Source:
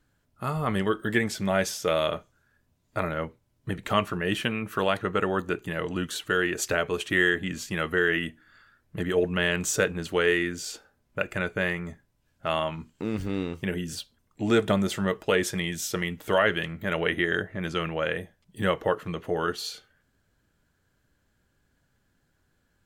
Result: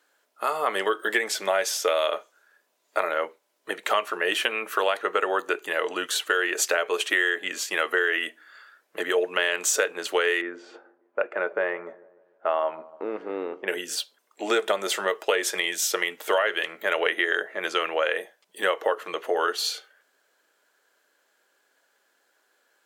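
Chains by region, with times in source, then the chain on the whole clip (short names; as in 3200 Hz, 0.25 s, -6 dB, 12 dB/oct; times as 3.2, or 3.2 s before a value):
10.41–13.68 LPF 1200 Hz + dark delay 0.15 s, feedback 49%, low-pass 830 Hz, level -18.5 dB
whole clip: HPF 430 Hz 24 dB/oct; compressor 5:1, threshold -27 dBFS; gain +7.5 dB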